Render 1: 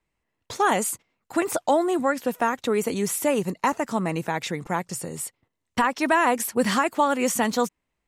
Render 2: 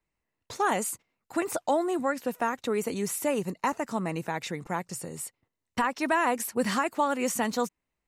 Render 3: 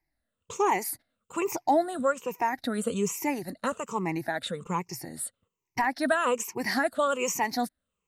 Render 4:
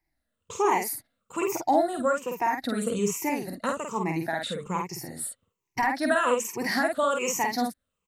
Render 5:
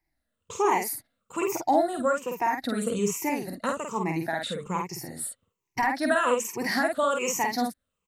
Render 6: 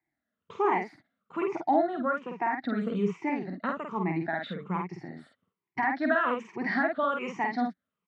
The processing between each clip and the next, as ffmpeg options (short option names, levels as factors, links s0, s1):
-af "bandreject=f=3300:w=16,volume=0.562"
-af "afftfilt=real='re*pow(10,17/40*sin(2*PI*(0.75*log(max(b,1)*sr/1024/100)/log(2)-(-1.2)*(pts-256)/sr)))':imag='im*pow(10,17/40*sin(2*PI*(0.75*log(max(b,1)*sr/1024/100)/log(2)-(-1.2)*(pts-256)/sr)))':win_size=1024:overlap=0.75,volume=0.75"
-filter_complex "[0:a]asplit=2[s0][s1];[s1]adelay=49,volume=0.668[s2];[s0][s2]amix=inputs=2:normalize=0"
-af anull
-af "highpass=170,equalizer=f=180:t=q:w=4:g=4,equalizer=f=510:t=q:w=4:g=-9,equalizer=f=970:t=q:w=4:g=-4,equalizer=f=2700:t=q:w=4:g=-8,lowpass=f=3000:w=0.5412,lowpass=f=3000:w=1.3066"